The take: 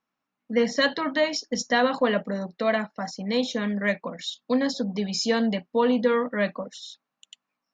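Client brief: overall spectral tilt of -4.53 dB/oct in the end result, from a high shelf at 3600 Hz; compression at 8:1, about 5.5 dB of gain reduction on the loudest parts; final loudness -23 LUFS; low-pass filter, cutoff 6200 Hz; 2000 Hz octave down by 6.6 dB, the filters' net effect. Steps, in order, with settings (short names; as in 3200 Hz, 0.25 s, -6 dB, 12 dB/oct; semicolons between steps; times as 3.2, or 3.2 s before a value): LPF 6200 Hz; bell 2000 Hz -6 dB; high shelf 3600 Hz -7.5 dB; compressor 8:1, threshold -23 dBFS; gain +7 dB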